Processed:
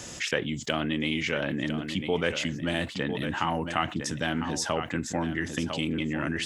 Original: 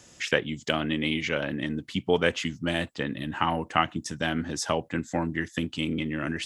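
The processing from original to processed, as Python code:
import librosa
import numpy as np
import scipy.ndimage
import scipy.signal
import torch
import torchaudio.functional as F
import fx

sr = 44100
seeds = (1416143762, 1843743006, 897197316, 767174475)

y = x + 10.0 ** (-13.0 / 20.0) * np.pad(x, (int(1003 * sr / 1000.0), 0))[:len(x)]
y = fx.env_flatten(y, sr, amount_pct=50)
y = y * 10.0 ** (-5.0 / 20.0)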